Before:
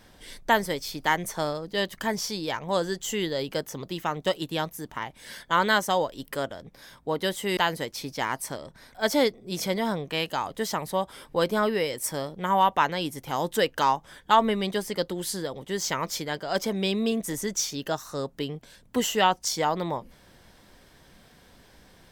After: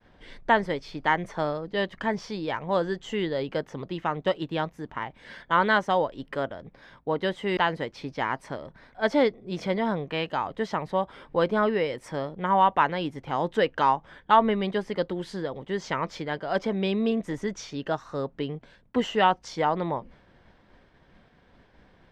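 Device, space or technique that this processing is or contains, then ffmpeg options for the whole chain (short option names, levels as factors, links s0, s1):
hearing-loss simulation: -af "lowpass=2500,agate=range=0.0224:threshold=0.00282:ratio=3:detection=peak,volume=1.12"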